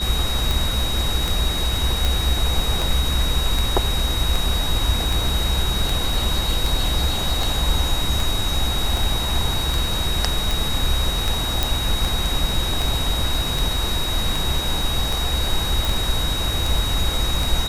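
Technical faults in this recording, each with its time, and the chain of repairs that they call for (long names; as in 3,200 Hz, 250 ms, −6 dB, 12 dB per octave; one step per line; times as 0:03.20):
scratch tick 78 rpm
whistle 3,800 Hz −25 dBFS
0:02.05: click
0:11.63: click
0:15.85: click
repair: click removal
notch filter 3,800 Hz, Q 30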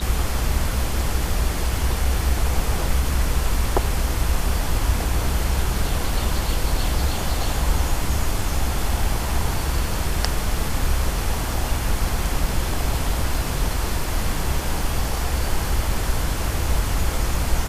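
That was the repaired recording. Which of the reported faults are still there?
none of them is left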